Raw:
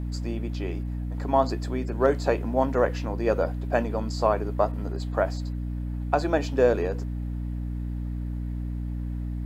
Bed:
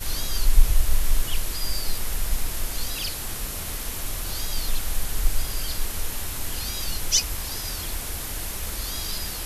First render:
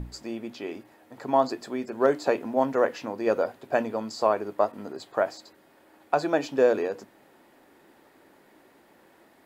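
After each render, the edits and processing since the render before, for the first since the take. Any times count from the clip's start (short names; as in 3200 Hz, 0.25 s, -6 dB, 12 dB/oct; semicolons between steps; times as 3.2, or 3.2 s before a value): notches 60/120/180/240/300 Hz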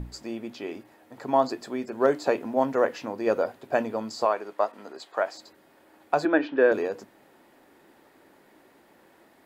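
4.25–5.35 weighting filter A; 6.25–6.72 speaker cabinet 260–3500 Hz, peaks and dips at 310 Hz +9 dB, 750 Hz -4 dB, 1600 Hz +9 dB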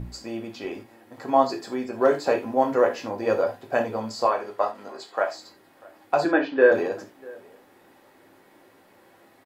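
outdoor echo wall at 110 m, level -24 dB; non-linear reverb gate 0.11 s falling, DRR 1.5 dB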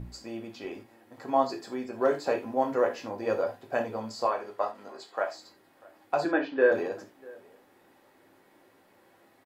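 gain -5.5 dB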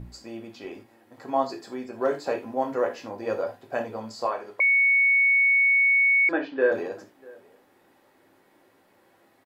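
4.6–6.29 bleep 2220 Hz -16.5 dBFS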